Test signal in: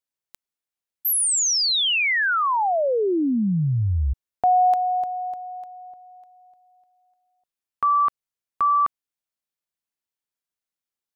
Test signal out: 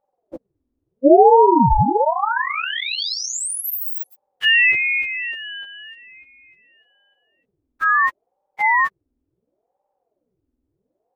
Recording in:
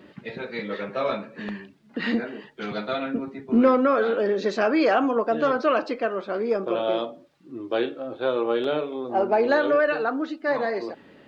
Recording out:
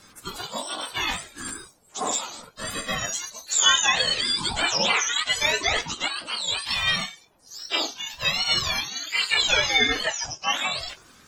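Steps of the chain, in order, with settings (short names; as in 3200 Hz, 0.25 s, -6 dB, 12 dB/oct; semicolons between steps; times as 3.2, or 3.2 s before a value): spectrum mirrored in octaves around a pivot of 1300 Hz; ring modulator with a swept carrier 420 Hz, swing 65%, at 0.71 Hz; gain +6.5 dB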